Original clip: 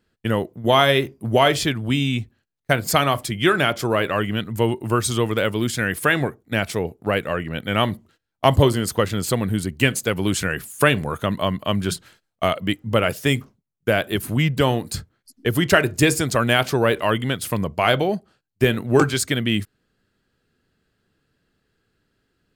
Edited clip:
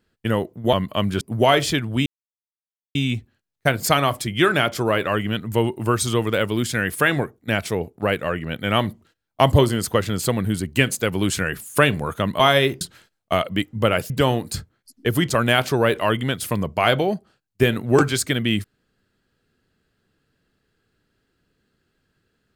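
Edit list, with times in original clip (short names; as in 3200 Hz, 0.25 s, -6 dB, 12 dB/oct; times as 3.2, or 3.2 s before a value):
0.73–1.14 swap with 11.44–11.92
1.99 insert silence 0.89 s
13.21–14.5 cut
15.69–16.3 cut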